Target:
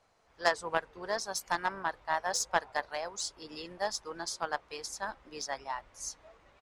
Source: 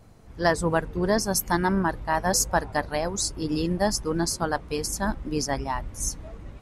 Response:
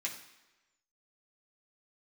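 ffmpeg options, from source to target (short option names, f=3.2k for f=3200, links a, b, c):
-filter_complex "[0:a]asplit=2[a][b];[b]asetrate=33038,aresample=44100,atempo=1.33484,volume=-15dB[c];[a][c]amix=inputs=2:normalize=0,acrossover=split=520 7800:gain=0.0891 1 0.158[d][e][f];[d][e][f]amix=inputs=3:normalize=0,aeval=exprs='0.355*(cos(1*acos(clip(val(0)/0.355,-1,1)))-cos(1*PI/2))+0.0708*(cos(3*acos(clip(val(0)/0.355,-1,1)))-cos(3*PI/2))+0.00282*(cos(5*acos(clip(val(0)/0.355,-1,1)))-cos(5*PI/2))':c=same"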